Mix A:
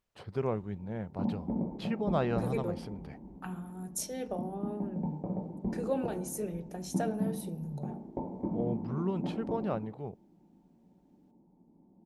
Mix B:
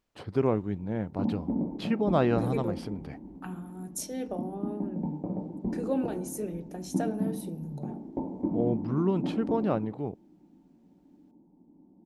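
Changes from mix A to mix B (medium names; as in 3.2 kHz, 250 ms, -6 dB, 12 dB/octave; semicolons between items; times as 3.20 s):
first voice +4.5 dB; master: add peaking EQ 290 Hz +9.5 dB 0.43 oct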